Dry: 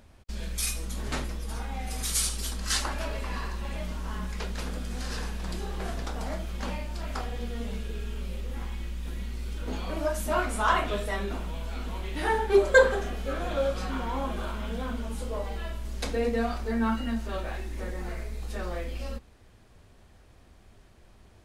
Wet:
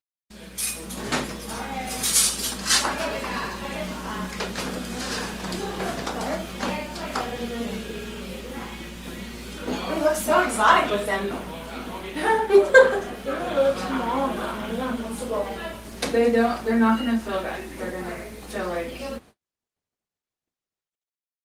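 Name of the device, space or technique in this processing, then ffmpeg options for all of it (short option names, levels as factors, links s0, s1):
video call: -af "highpass=160,dynaudnorm=f=130:g=11:m=2.82,agate=range=0.00447:threshold=0.00501:ratio=16:detection=peak" -ar 48000 -c:a libopus -b:a 32k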